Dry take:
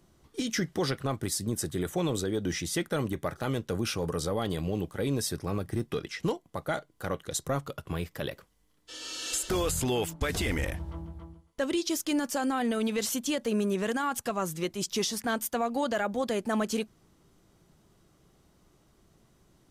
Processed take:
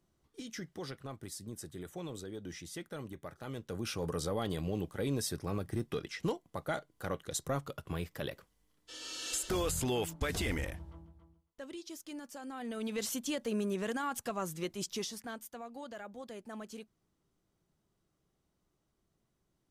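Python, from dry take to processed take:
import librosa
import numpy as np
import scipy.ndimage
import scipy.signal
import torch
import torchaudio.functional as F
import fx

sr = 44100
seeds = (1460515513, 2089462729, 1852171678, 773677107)

y = fx.gain(x, sr, db=fx.line((3.37, -13.5), (4.07, -4.5), (10.52, -4.5), (11.18, -16.5), (12.42, -16.5), (13.0, -6.0), (14.83, -6.0), (15.5, -16.5)))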